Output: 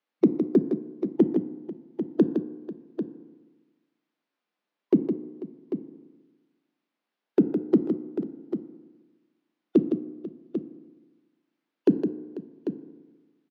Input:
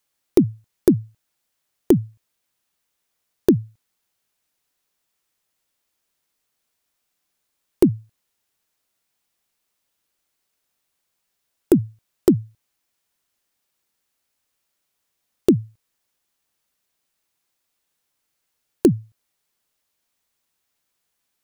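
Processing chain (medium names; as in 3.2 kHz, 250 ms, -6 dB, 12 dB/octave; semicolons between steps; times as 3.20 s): elliptic high-pass 190 Hz, stop band 70 dB; time stretch by phase-locked vocoder 0.63×; distance through air 280 m; multi-tap echo 161/492/794 ms -7.5/-17/-10 dB; FDN reverb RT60 1.3 s, low-frequency decay 1.05×, high-frequency decay 0.35×, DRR 11.5 dB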